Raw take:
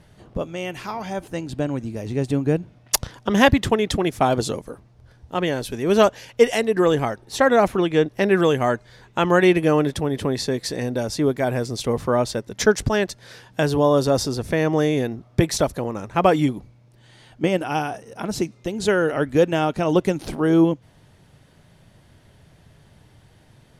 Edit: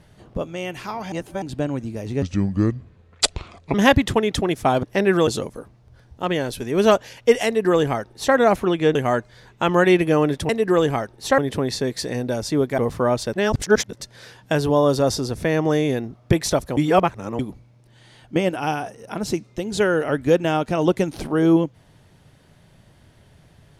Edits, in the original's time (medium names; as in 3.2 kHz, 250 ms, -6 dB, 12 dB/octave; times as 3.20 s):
1.12–1.42 s: reverse
2.22–3.30 s: speed 71%
6.58–7.47 s: copy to 10.05 s
8.07–8.51 s: move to 4.39 s
11.45–11.86 s: delete
12.41–13.09 s: reverse
15.85–16.47 s: reverse